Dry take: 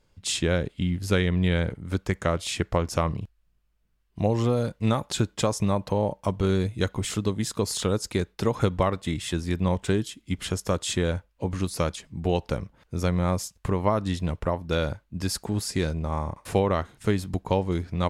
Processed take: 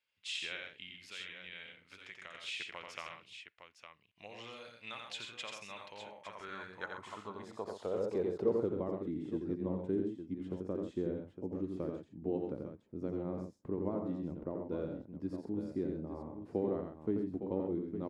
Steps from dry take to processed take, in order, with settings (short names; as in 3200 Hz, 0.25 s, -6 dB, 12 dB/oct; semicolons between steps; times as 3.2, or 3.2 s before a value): 1.01–2.35 compressor, threshold -26 dBFS, peak gain reduction 9 dB; on a send: tapped delay 59/87/130/860 ms -19/-4.5/-9/-9 dB; 7.96–8.6 on the sum: power-law curve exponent 0.7; band-pass sweep 2600 Hz -> 310 Hz, 5.92–8.84; gain -5.5 dB